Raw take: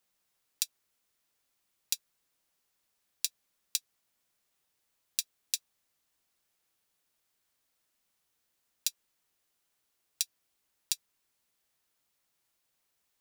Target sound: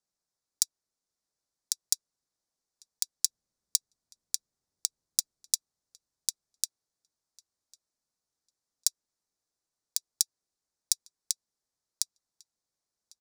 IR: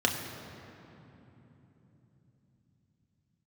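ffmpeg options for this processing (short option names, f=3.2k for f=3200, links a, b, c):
-filter_complex "[0:a]asettb=1/sr,asplit=3[a][b][c];[a]atrim=end=3.254[d];[b]atrim=start=3.25:end=5.56,asetpts=PTS-STARTPTS,afade=t=in:d=0.004:c=qsin,afade=t=out:st=2.306:d=0.004:c=qsin,lowshelf=f=300:g=10.5[e];[c]atrim=start=5.556[f];[d][e]acrossfade=d=0.004:c1=hsin:c2=qsin[g];[g][f]acrossfade=d=0.004:c1=qsin:c2=hsin,aecho=1:1:1099|2198|3297:0.501|0.0852|0.0145,adynamicsmooth=sensitivity=2.5:basefreq=1.5k,alimiter=limit=-15.5dB:level=0:latency=1:release=63,aexciter=amount=12.3:drive=9.2:freq=4.5k,volume=-6.5dB"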